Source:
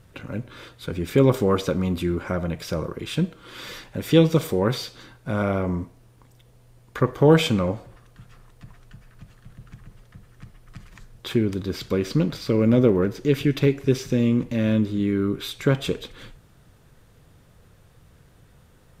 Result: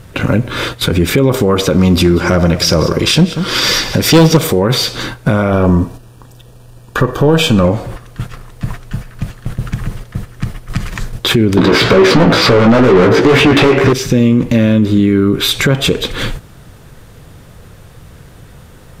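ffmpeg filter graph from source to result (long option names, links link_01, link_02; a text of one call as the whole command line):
ffmpeg -i in.wav -filter_complex "[0:a]asettb=1/sr,asplit=3[link_01][link_02][link_03];[link_01]atrim=end=1.784[link_04];[link_02]atrim=start=1.78:end=4.37,asetpts=PTS-STARTPTS,afade=type=in:duration=0.004:curve=qsin,afade=type=out:start_time=2.586:duration=0.004:curve=qsin,equalizer=frequency=5200:width=2.5:gain=10.5,volume=16.5dB,asoftclip=hard,volume=-16.5dB,aecho=1:1:188:0.178,atrim=end_sample=114219[link_05];[link_03]atrim=start=4.366[link_06];[link_04][link_05]acrossfade=duration=0.004:curve1=hsin:curve2=qsin[link_07];[link_07][link_06]acrossfade=duration=0.004:curve1=qsin:curve2=hsin,asettb=1/sr,asplit=3[link_08][link_09][link_10];[link_08]atrim=end=5.504[link_11];[link_09]atrim=start=5.5:end=7.65,asetpts=PTS-STARTPTS,afade=type=in:duration=0.004:curve=qsin,afade=type=out:start_time=2.146:duration=0.004:curve=qsin,aeval=exprs='if(lt(val(0),0),0.708*val(0),val(0))':channel_layout=same,asuperstop=centerf=2100:order=20:qfactor=5.8[link_12];[link_10]atrim=start=7.646[link_13];[link_11][link_12]acrossfade=duration=0.004:curve1=hsin:curve2=qsin[link_14];[link_14][link_13]acrossfade=duration=0.004:curve1=qsin:curve2=hsin,asettb=1/sr,asplit=3[link_15][link_16][link_17];[link_15]atrim=end=11.574[link_18];[link_16]atrim=start=11.57:end=13.93,asetpts=PTS-STARTPTS,afade=type=in:duration=0.004:curve=qsin,afade=type=out:start_time=2.356:duration=0.004:curve=qsin,highshelf=frequency=4000:gain=-12,asplit=2[link_19][link_20];[link_20]highpass=frequency=720:poles=1,volume=36dB,asoftclip=type=tanh:threshold=-5dB[link_21];[link_19][link_21]amix=inputs=2:normalize=0,lowpass=frequency=2000:poles=1,volume=-6dB,flanger=delay=15.5:depth=2.3:speed=2.2[link_22];[link_17]atrim=start=13.926[link_23];[link_18][link_22]acrossfade=duration=0.004:curve1=hsin:curve2=qsin[link_24];[link_24][link_23]acrossfade=duration=0.004:curve1=qsin:curve2=hsin,agate=range=-9dB:threshold=-46dB:ratio=16:detection=peak,acompressor=threshold=-37dB:ratio=2,alimiter=level_in=26.5dB:limit=-1dB:release=50:level=0:latency=1,volume=-1dB" out.wav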